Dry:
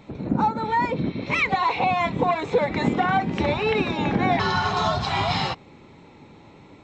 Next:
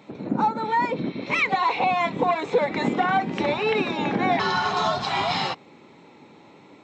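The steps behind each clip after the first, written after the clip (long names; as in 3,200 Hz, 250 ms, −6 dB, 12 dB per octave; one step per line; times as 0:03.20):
high-pass filter 200 Hz 12 dB per octave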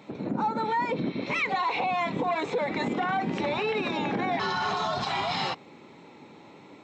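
brickwall limiter −20 dBFS, peak gain reduction 10 dB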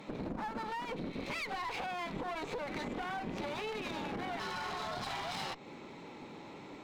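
downward compressor 10 to 1, threshold −34 dBFS, peak gain reduction 11 dB
asymmetric clip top −48 dBFS
level +1.5 dB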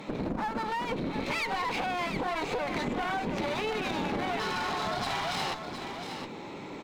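single-tap delay 714 ms −8.5 dB
level +7 dB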